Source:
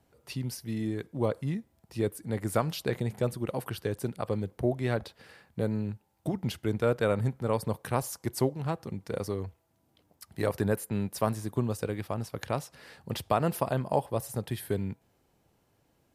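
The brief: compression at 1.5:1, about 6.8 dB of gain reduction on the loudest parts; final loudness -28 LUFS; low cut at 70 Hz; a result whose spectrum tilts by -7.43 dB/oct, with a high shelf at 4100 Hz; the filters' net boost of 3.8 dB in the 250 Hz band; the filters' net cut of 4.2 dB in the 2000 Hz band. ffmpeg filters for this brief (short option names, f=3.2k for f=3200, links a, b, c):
-af "highpass=70,equalizer=f=250:t=o:g=5,equalizer=f=2k:t=o:g=-4.5,highshelf=f=4.1k:g=-6.5,acompressor=threshold=-39dB:ratio=1.5,volume=8.5dB"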